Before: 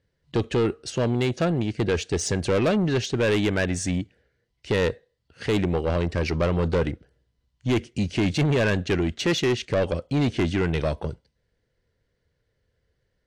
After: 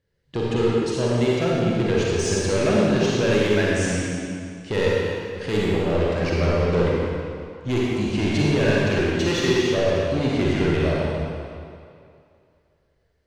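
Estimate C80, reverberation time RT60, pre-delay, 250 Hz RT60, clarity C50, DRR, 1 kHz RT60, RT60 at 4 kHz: -2.0 dB, 2.4 s, 38 ms, 2.2 s, -4.5 dB, -5.5 dB, 2.5 s, 2.0 s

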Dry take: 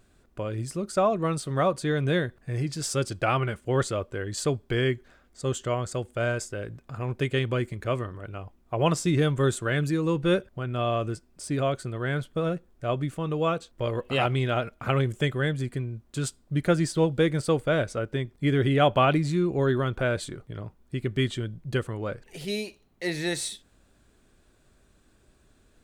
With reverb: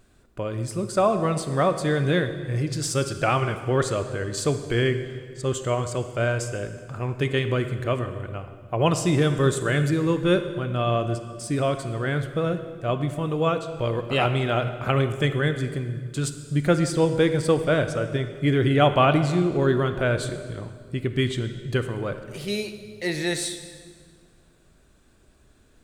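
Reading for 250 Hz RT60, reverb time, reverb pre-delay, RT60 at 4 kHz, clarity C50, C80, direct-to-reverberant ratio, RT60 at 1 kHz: 2.2 s, 1.9 s, 28 ms, 1.6 s, 10.0 dB, 11.0 dB, 9.0 dB, 1.7 s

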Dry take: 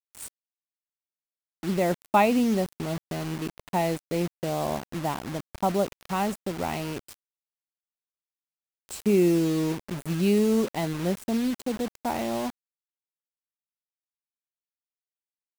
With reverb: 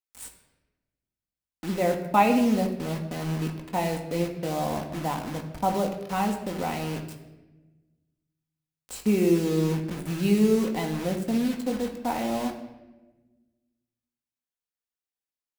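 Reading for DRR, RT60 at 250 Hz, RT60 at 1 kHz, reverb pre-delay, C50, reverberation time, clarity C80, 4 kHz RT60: 2.0 dB, 1.7 s, 0.95 s, 4 ms, 8.5 dB, 1.1 s, 10.5 dB, 0.80 s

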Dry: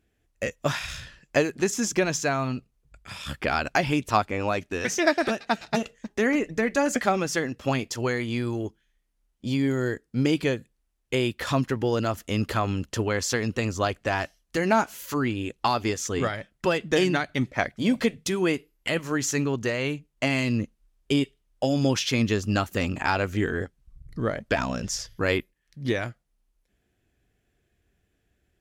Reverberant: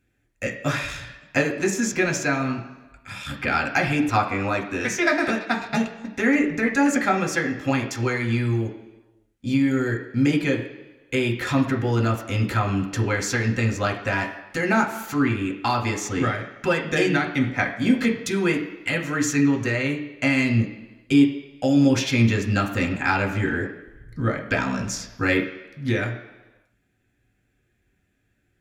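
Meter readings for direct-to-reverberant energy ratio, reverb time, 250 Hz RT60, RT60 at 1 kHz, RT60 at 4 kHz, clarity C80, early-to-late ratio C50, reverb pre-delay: 0.5 dB, 1.1 s, 1.0 s, 1.1 s, 1.2 s, 11.0 dB, 8.5 dB, 3 ms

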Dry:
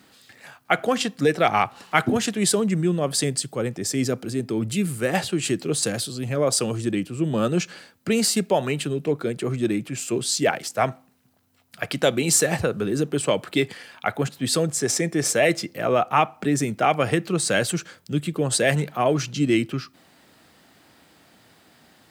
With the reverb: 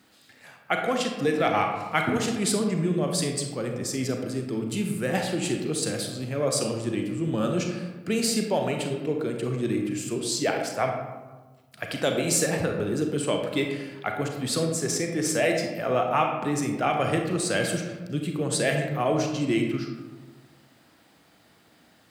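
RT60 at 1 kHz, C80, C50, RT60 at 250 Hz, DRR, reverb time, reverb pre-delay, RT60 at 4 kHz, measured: 1.2 s, 6.5 dB, 4.0 dB, 1.5 s, 2.5 dB, 1.3 s, 32 ms, 0.65 s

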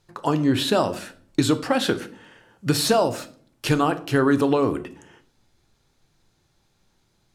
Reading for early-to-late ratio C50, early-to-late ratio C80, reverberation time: 16.5 dB, 20.0 dB, 0.50 s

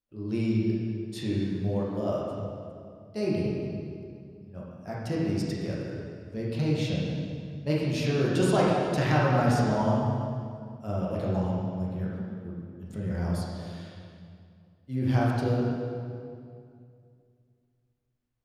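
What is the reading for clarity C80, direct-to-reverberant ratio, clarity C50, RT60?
0.0 dB, -5.5 dB, -1.5 dB, 2.3 s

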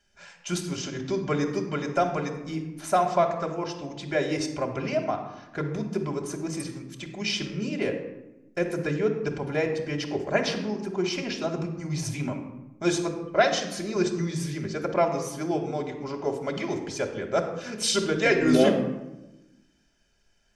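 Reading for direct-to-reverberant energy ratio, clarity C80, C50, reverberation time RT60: 1.0 dB, 9.5 dB, 7.5 dB, 1.0 s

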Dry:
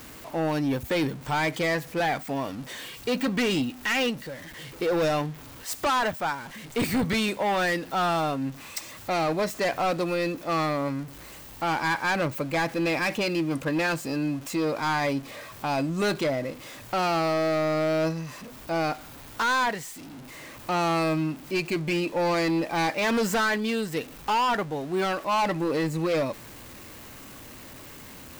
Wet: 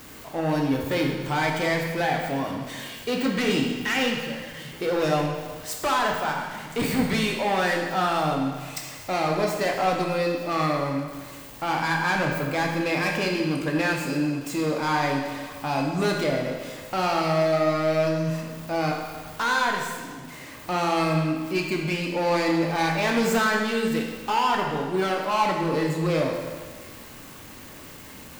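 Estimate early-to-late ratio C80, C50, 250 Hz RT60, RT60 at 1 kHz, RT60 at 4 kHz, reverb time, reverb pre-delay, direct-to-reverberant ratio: 5.0 dB, 3.0 dB, 1.5 s, 1.5 s, 1.4 s, 1.5 s, 17 ms, 0.5 dB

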